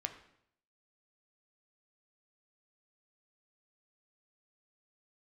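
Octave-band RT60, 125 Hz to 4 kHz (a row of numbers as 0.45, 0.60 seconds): 0.80, 0.75, 0.70, 0.65, 0.65, 0.60 seconds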